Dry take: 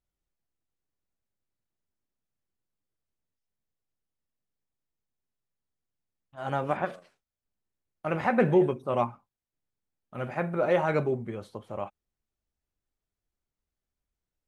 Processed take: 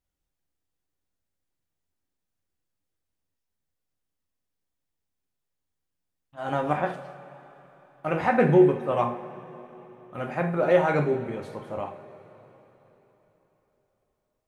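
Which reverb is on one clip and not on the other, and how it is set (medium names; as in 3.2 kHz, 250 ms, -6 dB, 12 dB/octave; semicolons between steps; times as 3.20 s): two-slope reverb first 0.44 s, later 4.1 s, from -18 dB, DRR 3.5 dB; trim +1.5 dB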